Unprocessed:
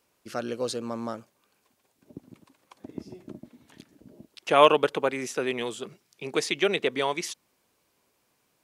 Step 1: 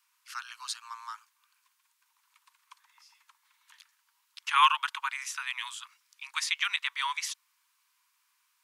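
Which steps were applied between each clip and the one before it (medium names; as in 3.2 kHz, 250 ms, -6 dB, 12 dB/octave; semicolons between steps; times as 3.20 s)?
steep high-pass 930 Hz 96 dB/octave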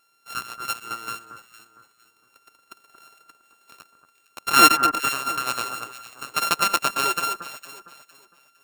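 sorted samples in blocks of 32 samples; echo whose repeats swap between lows and highs 229 ms, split 1.6 kHz, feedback 54%, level -8 dB; trim +8 dB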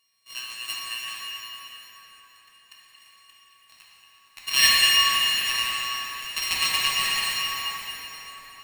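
four frequency bands reordered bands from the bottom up 4123; plate-style reverb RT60 4.8 s, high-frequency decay 0.65×, DRR -6 dB; trim -5.5 dB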